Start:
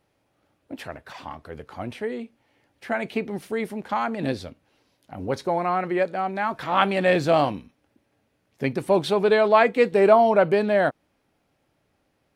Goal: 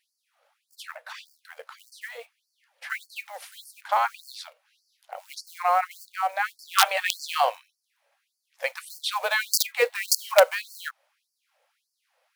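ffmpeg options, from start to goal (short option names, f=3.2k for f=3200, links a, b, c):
-af "acrusher=bits=7:mode=log:mix=0:aa=0.000001,aeval=exprs='(mod(2.51*val(0)+1,2)-1)/2.51':c=same,afftfilt=real='re*gte(b*sr/1024,460*pow(4400/460,0.5+0.5*sin(2*PI*1.7*pts/sr)))':imag='im*gte(b*sr/1024,460*pow(4400/460,0.5+0.5*sin(2*PI*1.7*pts/sr)))':win_size=1024:overlap=0.75,volume=3dB"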